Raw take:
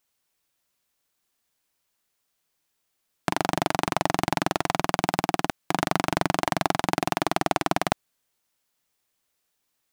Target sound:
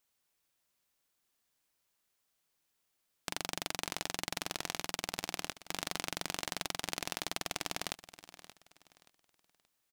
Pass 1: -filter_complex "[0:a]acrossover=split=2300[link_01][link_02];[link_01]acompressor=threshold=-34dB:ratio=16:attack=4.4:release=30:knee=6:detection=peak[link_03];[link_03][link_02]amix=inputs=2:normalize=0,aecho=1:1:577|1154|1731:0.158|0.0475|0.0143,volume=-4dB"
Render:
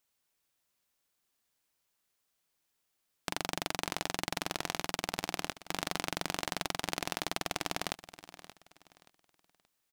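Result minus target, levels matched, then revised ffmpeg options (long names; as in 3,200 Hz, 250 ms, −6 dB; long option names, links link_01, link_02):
downward compressor: peak gain reduction −6 dB
-filter_complex "[0:a]acrossover=split=2300[link_01][link_02];[link_01]acompressor=threshold=-40.5dB:ratio=16:attack=4.4:release=30:knee=6:detection=peak[link_03];[link_03][link_02]amix=inputs=2:normalize=0,aecho=1:1:577|1154|1731:0.158|0.0475|0.0143,volume=-4dB"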